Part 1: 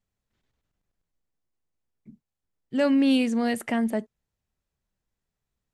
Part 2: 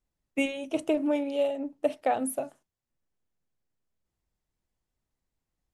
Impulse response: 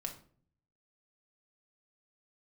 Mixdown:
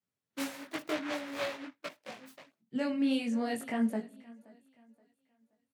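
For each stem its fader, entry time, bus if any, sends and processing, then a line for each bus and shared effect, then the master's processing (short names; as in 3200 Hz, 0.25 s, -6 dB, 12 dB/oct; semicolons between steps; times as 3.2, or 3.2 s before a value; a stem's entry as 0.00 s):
-5.5 dB, 0.00 s, send -5.5 dB, echo send -19.5 dB, noise-modulated level, depth 50%
-6.5 dB, 0.00 s, no send, no echo send, noise-modulated delay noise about 1500 Hz, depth 0.23 ms; auto duck -12 dB, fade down 0.40 s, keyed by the first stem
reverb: on, RT60 0.50 s, pre-delay 4 ms
echo: feedback echo 0.525 s, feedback 34%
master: HPF 110 Hz 24 dB/oct; chorus voices 4, 1.4 Hz, delay 20 ms, depth 3 ms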